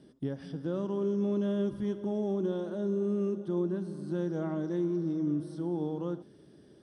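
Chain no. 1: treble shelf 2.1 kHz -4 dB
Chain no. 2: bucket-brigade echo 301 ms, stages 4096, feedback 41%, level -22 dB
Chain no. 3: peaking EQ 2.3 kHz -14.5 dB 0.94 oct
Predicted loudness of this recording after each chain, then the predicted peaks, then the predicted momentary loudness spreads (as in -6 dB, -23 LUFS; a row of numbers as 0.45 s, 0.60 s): -32.5 LUFS, -32.5 LUFS, -33.0 LUFS; -21.5 dBFS, -21.0 dBFS, -21.5 dBFS; 7 LU, 7 LU, 7 LU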